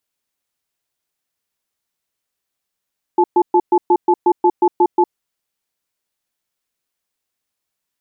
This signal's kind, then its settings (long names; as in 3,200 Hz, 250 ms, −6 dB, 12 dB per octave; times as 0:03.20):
tone pair in a cadence 355 Hz, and 866 Hz, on 0.06 s, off 0.12 s, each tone −11.5 dBFS 1.86 s